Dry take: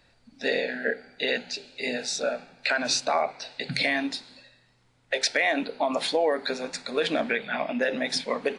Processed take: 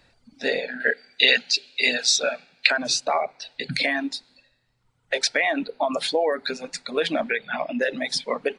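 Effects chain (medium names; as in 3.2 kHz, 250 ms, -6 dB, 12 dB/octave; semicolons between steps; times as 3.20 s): reverb removal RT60 1.5 s; 0.80–2.67 s: frequency weighting D; trim +2.5 dB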